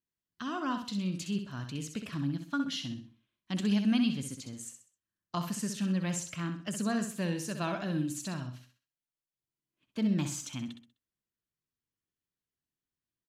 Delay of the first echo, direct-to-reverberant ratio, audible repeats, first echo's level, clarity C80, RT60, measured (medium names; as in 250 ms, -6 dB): 64 ms, no reverb, 4, -7.5 dB, no reverb, no reverb